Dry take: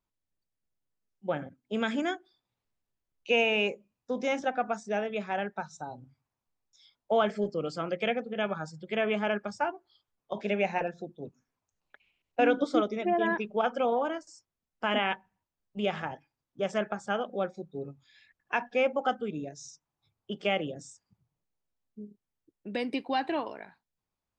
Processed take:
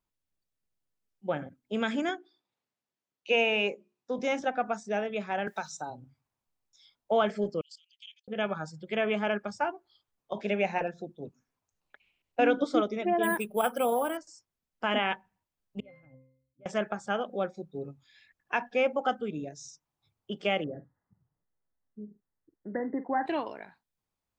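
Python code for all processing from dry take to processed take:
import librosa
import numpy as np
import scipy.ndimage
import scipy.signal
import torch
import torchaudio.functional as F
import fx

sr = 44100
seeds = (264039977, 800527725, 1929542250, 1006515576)

y = fx.chain(x, sr, fx.bandpass_edges(low_hz=180.0, high_hz=7000.0),
    fx.hum_notches(base_hz=60, count=7), at=(2.09, 4.19))
y = fx.chain(y, sr, fx.highpass(hz=210.0, slope=6),
    fx.high_shelf(hz=4000.0, db=10.5),
    fx.band_squash(depth_pct=70), at=(5.47, 5.9))
y = fx.chain(y, sr, fx.cheby1_highpass(hz=3000.0, order=5),
    fx.level_steps(step_db=16), at=(7.61, 8.28))
y = fx.chain(y, sr, fx.high_shelf(hz=5100.0, db=9.0),
    fx.resample_bad(factor=4, down='filtered', up='hold'), at=(13.23, 14.17))
y = fx.chain(y, sr, fx.peak_eq(hz=1100.0, db=-14.0, octaves=0.3),
    fx.octave_resonator(note='C', decay_s=0.43),
    fx.sustainer(db_per_s=87.0), at=(15.8, 16.66))
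y = fx.chain(y, sr, fx.brickwall_lowpass(high_hz=2100.0),
    fx.doubler(ms=47.0, db=-12.5), at=(20.64, 23.26))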